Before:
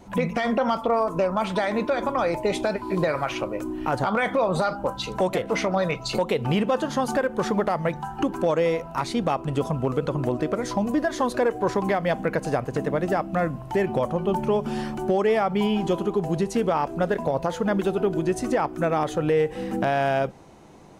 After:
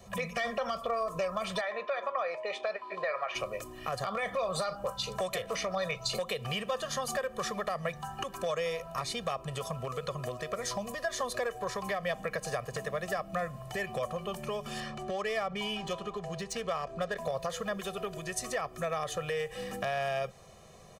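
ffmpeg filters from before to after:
ffmpeg -i in.wav -filter_complex "[0:a]asplit=3[link_01][link_02][link_03];[link_01]afade=type=out:start_time=1.6:duration=0.02[link_04];[link_02]highpass=580,lowpass=2500,afade=type=in:start_time=1.6:duration=0.02,afade=type=out:start_time=3.34:duration=0.02[link_05];[link_03]afade=type=in:start_time=3.34:duration=0.02[link_06];[link_04][link_05][link_06]amix=inputs=3:normalize=0,asettb=1/sr,asplit=3[link_07][link_08][link_09];[link_07]atrim=end=14.804[link_10];[link_08]atrim=start=14.8:end=17.17,asetpts=PTS-STARTPTS,afade=type=in:duration=0.004:curve=qsin,afade=type=out:start_time=2.366:duration=0.004:curve=qsin,adynamicsmooth=sensitivity=7:basefreq=4500[link_11];[link_09]atrim=start=17.166[link_12];[link_10][link_11]acrossfade=duration=0.004:curve1=hsin:curve2=qsin[link_13];[link_13][link_12]acrossfade=duration=0.004:curve1=qsin:curve2=hsin,acrossover=split=89|860[link_14][link_15][link_16];[link_14]acompressor=threshold=-54dB:ratio=4[link_17];[link_15]acompressor=threshold=-31dB:ratio=4[link_18];[link_16]acompressor=threshold=-31dB:ratio=4[link_19];[link_17][link_18][link_19]amix=inputs=3:normalize=0,highshelf=frequency=2500:gain=8,aecho=1:1:1.7:0.9,volume=-7.5dB" out.wav

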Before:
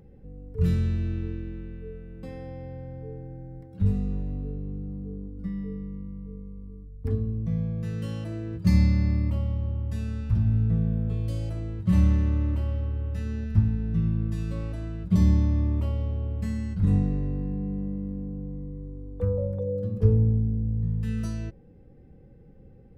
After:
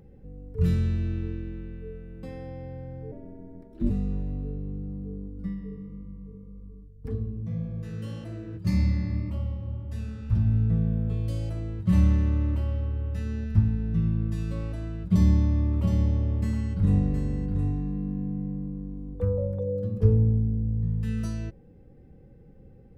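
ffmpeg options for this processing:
ffmpeg -i in.wav -filter_complex "[0:a]asplit=3[link_01][link_02][link_03];[link_01]afade=type=out:start_time=3.11:duration=0.02[link_04];[link_02]aeval=exprs='val(0)*sin(2*PI*140*n/s)':channel_layout=same,afade=type=in:start_time=3.11:duration=0.02,afade=type=out:start_time=3.89:duration=0.02[link_05];[link_03]afade=type=in:start_time=3.89:duration=0.02[link_06];[link_04][link_05][link_06]amix=inputs=3:normalize=0,asplit=3[link_07][link_08][link_09];[link_07]afade=type=out:start_time=5.53:duration=0.02[link_10];[link_08]flanger=delay=0.6:depth=9.5:regen=-34:speed=1.8:shape=triangular,afade=type=in:start_time=5.53:duration=0.02,afade=type=out:start_time=10.3:duration=0.02[link_11];[link_09]afade=type=in:start_time=10.3:duration=0.02[link_12];[link_10][link_11][link_12]amix=inputs=3:normalize=0,asettb=1/sr,asplit=3[link_13][link_14][link_15];[link_13]atrim=end=15.014[link_16];[link_14]atrim=start=15.01:end=19.15,asetpts=PTS-STARTPTS,afade=type=in:duration=0.004:curve=qsin,afade=type=out:start_time=4.136:duration=0.004:curve=qsin,aecho=1:1:718:0.473,atrim=end_sample=182574[link_17];[link_15]atrim=start=19.146[link_18];[link_16][link_17]acrossfade=duration=0.004:curve1=hsin:curve2=qsin[link_19];[link_19][link_18]acrossfade=duration=0.004:curve1=qsin:curve2=hsin" out.wav

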